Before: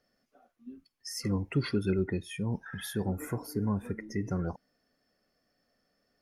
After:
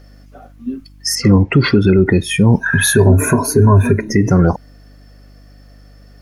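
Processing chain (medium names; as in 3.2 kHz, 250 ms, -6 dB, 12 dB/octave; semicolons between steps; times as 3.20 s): 2.60–4.09 s: rippled EQ curve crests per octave 1.5, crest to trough 16 dB; mains buzz 50 Hz, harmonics 6, -65 dBFS -7 dB/octave; 1.15–2.06 s: distance through air 130 m; loudness maximiser +23.5 dB; trim -1 dB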